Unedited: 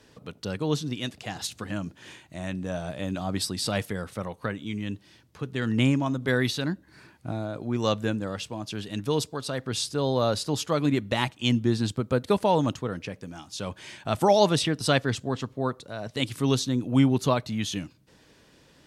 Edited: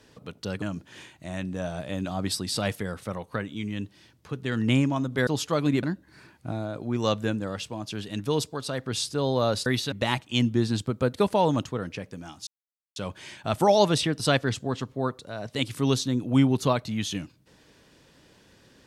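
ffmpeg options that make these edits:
-filter_complex "[0:a]asplit=7[s0][s1][s2][s3][s4][s5][s6];[s0]atrim=end=0.622[s7];[s1]atrim=start=1.718:end=6.372[s8];[s2]atrim=start=10.458:end=11.022[s9];[s3]atrim=start=6.628:end=10.462[s10];[s4]atrim=start=6.368:end=6.632[s11];[s5]atrim=start=11.018:end=13.57,asetpts=PTS-STARTPTS,afade=t=out:st=2.548:d=0.004:c=hsin,apad=pad_dur=0.49[s12];[s6]atrim=start=13.57,asetpts=PTS-STARTPTS,afade=t=in:d=0.004:c=hsin[s13];[s7][s8]acrossfade=d=0.004:c1=hsin:c2=hsin[s14];[s14][s9]acrossfade=d=0.004:c1=hsin:c2=hsin[s15];[s15][s10]acrossfade=d=0.004:c1=hsin:c2=hsin[s16];[s16][s11]acrossfade=d=0.004:c1=hsin:c2=hsin[s17];[s12][s13]concat=n=2:v=0:a=1[s18];[s17][s18]acrossfade=d=0.004:c1=hsin:c2=hsin"

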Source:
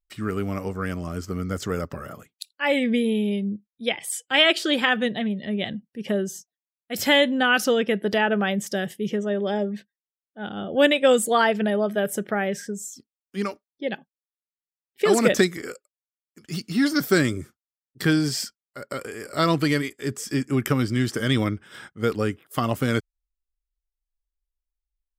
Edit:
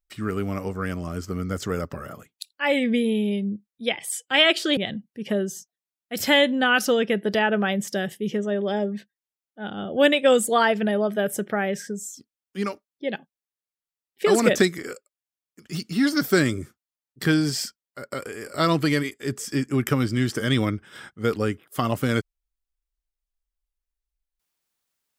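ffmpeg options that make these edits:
-filter_complex "[0:a]asplit=2[s0][s1];[s0]atrim=end=4.772[s2];[s1]atrim=start=5.558[s3];[s2][s3]acrossfade=d=0.004:c1=hsin:c2=hsin"

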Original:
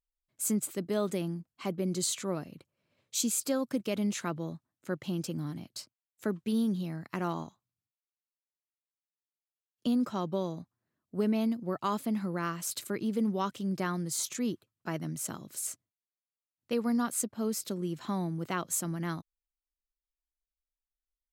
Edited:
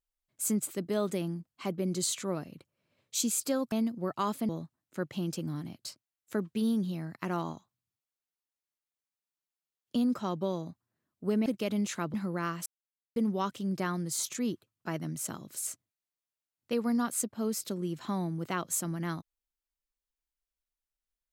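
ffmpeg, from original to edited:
-filter_complex "[0:a]asplit=7[s0][s1][s2][s3][s4][s5][s6];[s0]atrim=end=3.722[s7];[s1]atrim=start=11.368:end=12.142[s8];[s2]atrim=start=4.398:end=11.372[s9];[s3]atrim=start=3.718:end=4.402[s10];[s4]atrim=start=12.138:end=12.66,asetpts=PTS-STARTPTS,afade=t=out:st=0.518:d=0.004:c=hsin[s11];[s5]atrim=start=12.66:end=13.16,asetpts=PTS-STARTPTS,volume=0[s12];[s6]atrim=start=13.16,asetpts=PTS-STARTPTS,afade=t=in:d=0.004:c=hsin[s13];[s7][s8]acrossfade=d=0.004:c1=hsin:c2=hsin[s14];[s14][s9]acrossfade=d=0.004:c1=hsin:c2=hsin[s15];[s15][s10]acrossfade=d=0.004:c1=hsin:c2=hsin[s16];[s11][s12][s13]concat=n=3:v=0:a=1[s17];[s16][s17]acrossfade=d=0.004:c1=hsin:c2=hsin"

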